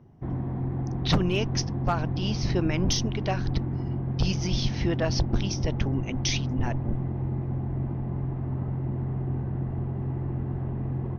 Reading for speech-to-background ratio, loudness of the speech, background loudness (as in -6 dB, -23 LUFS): 0.5 dB, -30.0 LUFS, -30.5 LUFS